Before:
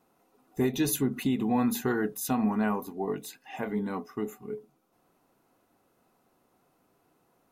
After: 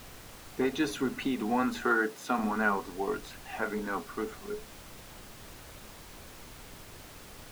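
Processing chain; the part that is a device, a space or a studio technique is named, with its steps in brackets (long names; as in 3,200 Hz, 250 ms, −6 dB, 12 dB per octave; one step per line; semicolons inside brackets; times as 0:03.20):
horn gramophone (band-pass filter 280–4,500 Hz; parametric band 1,400 Hz +11 dB 0.44 octaves; tape wow and flutter; pink noise bed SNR 14 dB)
0:01.85–0:02.39: high-pass filter 180 Hz 12 dB per octave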